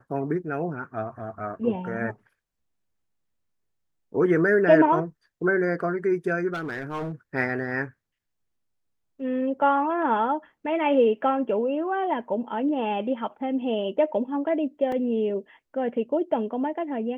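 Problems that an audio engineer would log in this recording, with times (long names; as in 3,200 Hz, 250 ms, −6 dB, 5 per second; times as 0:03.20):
0:06.53–0:07.12: clipping −27 dBFS
0:14.92: drop-out 2.9 ms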